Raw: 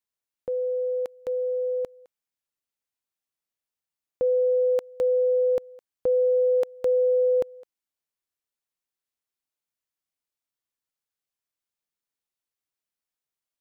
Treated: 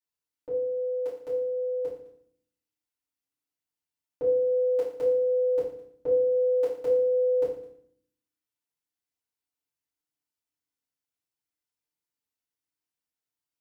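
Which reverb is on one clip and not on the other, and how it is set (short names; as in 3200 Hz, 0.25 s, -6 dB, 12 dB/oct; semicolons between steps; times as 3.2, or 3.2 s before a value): FDN reverb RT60 0.59 s, low-frequency decay 1.6×, high-frequency decay 0.95×, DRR -10 dB; gain -12.5 dB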